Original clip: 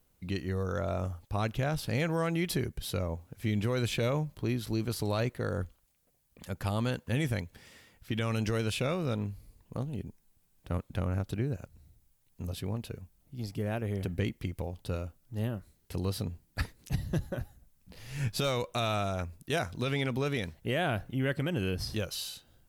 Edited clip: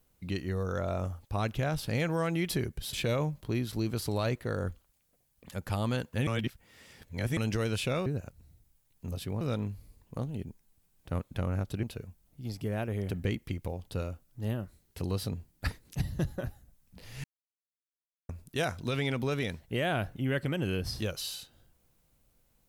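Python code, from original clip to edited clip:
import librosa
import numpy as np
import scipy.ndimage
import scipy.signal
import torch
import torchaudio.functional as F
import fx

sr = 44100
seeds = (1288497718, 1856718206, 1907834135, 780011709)

y = fx.edit(x, sr, fx.cut(start_s=2.93, length_s=0.94),
    fx.reverse_span(start_s=7.21, length_s=1.1),
    fx.move(start_s=11.42, length_s=1.35, to_s=9.0),
    fx.silence(start_s=18.18, length_s=1.05), tone=tone)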